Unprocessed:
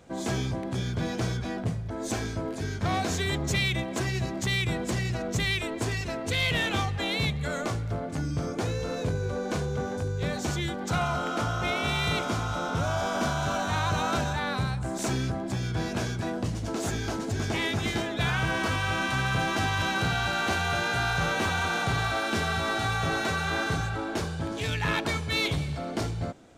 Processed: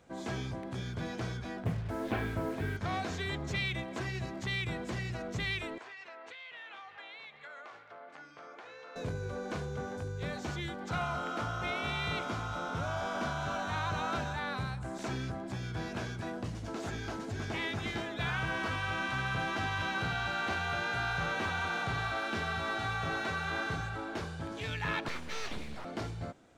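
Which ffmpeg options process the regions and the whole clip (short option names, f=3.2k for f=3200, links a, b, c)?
-filter_complex "[0:a]asettb=1/sr,asplit=3[a][b][c];[a]atrim=end=1.664[d];[b]atrim=start=1.66:end=2.77,asetpts=PTS-STARTPTS,afade=t=in:d=0.004:c=qsin,afade=t=out:st=1.106:d=0.004:c=qsin,lowpass=f=3.1k:w=0.5412,lowpass=f=3.1k:w=1.3066,acontrast=36,acrusher=bits=6:mix=0:aa=0.5[e];[c]atrim=start=2.766[f];[d][e]acrossfade=d=0.004:c1=hsin:c2=qsin[g];[g][f]acrossfade=d=0.004:c1=qsin:c2=hsin,asettb=1/sr,asplit=3[h][i][j];[h]atrim=end=5.784[k];[i]atrim=start=5.78:end=8.96,asetpts=PTS-STARTPTS,afade=t=in:d=0.004:c=qsin,afade=t=out:st=3.176:d=0.004:c=qsin,highpass=770,lowpass=2.9k,acompressor=threshold=-38dB:ratio=10:attack=3.2:release=140:knee=1:detection=peak[l];[j]atrim=start=8.956[m];[k][l]acrossfade=d=0.004:c1=hsin:c2=qsin[n];[n][m]acrossfade=d=0.004:c1=qsin:c2=hsin,asettb=1/sr,asplit=3[o][p][q];[o]atrim=end=25.084[r];[p]atrim=start=25.08:end=25.85,asetpts=PTS-STARTPTS,afade=t=in:d=0.004:c=qsin,afade=t=out:st=0.766:d=0.004:c=qsin,asubboost=boost=9.5:cutoff=65,aeval=exprs='abs(val(0))':c=same[s];[q]atrim=start=25.846[t];[r][s]acrossfade=d=0.004:c1=hsin:c2=qsin[u];[u][t]acrossfade=d=0.004:c1=qsin:c2=hsin,acrossover=split=5300[v][w];[w]acompressor=threshold=-50dB:ratio=4:attack=1:release=60[x];[v][x]amix=inputs=2:normalize=0,equalizer=f=1.5k:t=o:w=1.9:g=3.5,volume=-8.5dB"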